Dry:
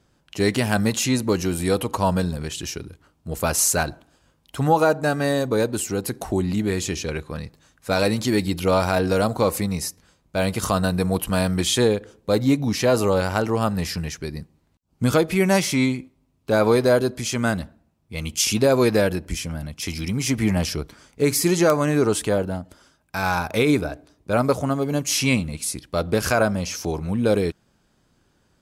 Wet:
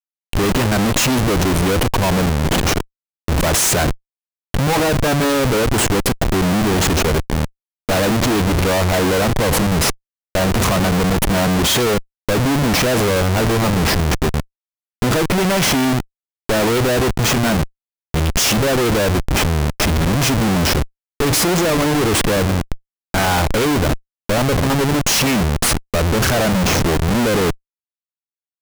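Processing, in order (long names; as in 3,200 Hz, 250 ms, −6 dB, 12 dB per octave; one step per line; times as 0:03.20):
comparator with hysteresis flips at −28 dBFS
level +7 dB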